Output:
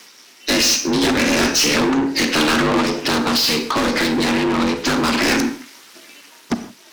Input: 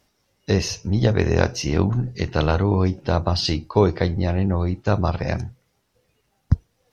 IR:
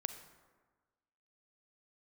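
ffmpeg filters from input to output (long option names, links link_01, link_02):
-filter_complex "[0:a]aeval=exprs='val(0)*sin(2*PI*150*n/s)':channel_layout=same,highpass=220,dynaudnorm=framelen=540:gausssize=5:maxgain=11.5dB,equalizer=frequency=650:width=1.6:gain=-10,asplit=2[link_01][link_02];[link_02]highpass=frequency=720:poles=1,volume=38dB,asoftclip=type=tanh:threshold=-4.5dB[link_03];[link_01][link_03]amix=inputs=2:normalize=0,lowpass=frequency=2800:poles=1,volume=-6dB,highshelf=frequency=3200:gain=11,asettb=1/sr,asplit=3[link_04][link_05][link_06];[link_04]atrim=end=2.804[link_07];[link_05]atrim=start=2.8:end=5.19,asetpts=PTS-STARTPTS,afade=type=in:duration=0.004:curve=qsin,afade=type=out:start_time=2.386:duration=0.004:curve=qsin,acompressor=threshold=-11dB:ratio=6[link_08];[link_06]atrim=start=5.186[link_09];[link_07][link_08]acrossfade=duration=0.004:curve1=hsin:curve2=qsin[link_10];[link_10][link_09]acrossfade=duration=0.004:curve1=qsin:curve2=hsin[link_11];[1:a]atrim=start_sample=2205,afade=type=out:start_time=0.22:duration=0.01,atrim=end_sample=10143[link_12];[link_11][link_12]afir=irnorm=-1:irlink=0,volume=-4dB"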